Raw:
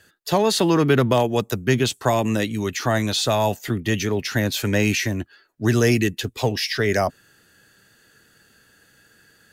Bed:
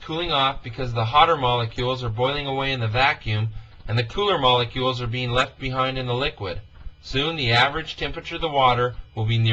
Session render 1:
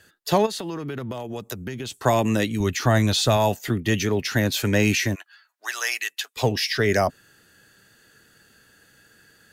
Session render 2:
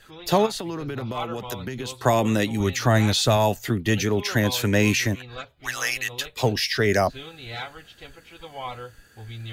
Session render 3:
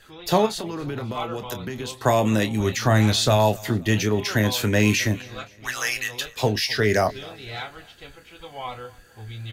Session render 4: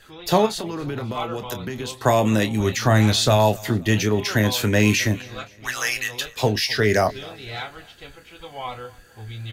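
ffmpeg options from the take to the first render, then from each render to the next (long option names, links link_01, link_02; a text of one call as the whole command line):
ffmpeg -i in.wav -filter_complex "[0:a]asplit=3[link_01][link_02][link_03];[link_01]afade=type=out:start_time=0.45:duration=0.02[link_04];[link_02]acompressor=threshold=-27dB:ratio=16:attack=3.2:release=140:knee=1:detection=peak,afade=type=in:start_time=0.45:duration=0.02,afade=type=out:start_time=2.01:duration=0.02[link_05];[link_03]afade=type=in:start_time=2.01:duration=0.02[link_06];[link_04][link_05][link_06]amix=inputs=3:normalize=0,asettb=1/sr,asplit=3[link_07][link_08][link_09];[link_07]atrim=end=2.604[link_10];[link_08]atrim=start=2.6:end=3.37,asetpts=PTS-STARTPTS,afade=type=in:duration=0.004:curve=qsin,afade=type=out:start_time=0.766:duration=0.004:curve=qsin,lowshelf=frequency=97:gain=12[link_11];[link_09]atrim=start=3.366[link_12];[link_10][link_11]acrossfade=duration=0.004:curve1=hsin:curve2=qsin[link_13];[link_13][link_12]acrossfade=duration=0.004:curve1=qsin:curve2=hsin,asplit=3[link_14][link_15][link_16];[link_14]afade=type=out:start_time=5.14:duration=0.02[link_17];[link_15]highpass=frequency=880:width=0.5412,highpass=frequency=880:width=1.3066,afade=type=in:start_time=5.14:duration=0.02,afade=type=out:start_time=6.36:duration=0.02[link_18];[link_16]afade=type=in:start_time=6.36:duration=0.02[link_19];[link_17][link_18][link_19]amix=inputs=3:normalize=0" out.wav
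ffmpeg -i in.wav -i bed.wav -filter_complex "[1:a]volume=-16.5dB[link_01];[0:a][link_01]amix=inputs=2:normalize=0" out.wav
ffmpeg -i in.wav -filter_complex "[0:a]asplit=2[link_01][link_02];[link_02]adelay=28,volume=-10.5dB[link_03];[link_01][link_03]amix=inputs=2:normalize=0,aecho=1:1:260|520|780:0.0708|0.0326|0.015" out.wav
ffmpeg -i in.wav -af "volume=1.5dB" out.wav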